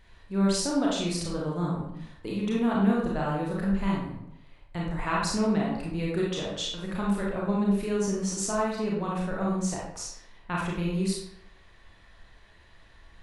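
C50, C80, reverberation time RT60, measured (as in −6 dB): 0.5 dB, 5.0 dB, 0.75 s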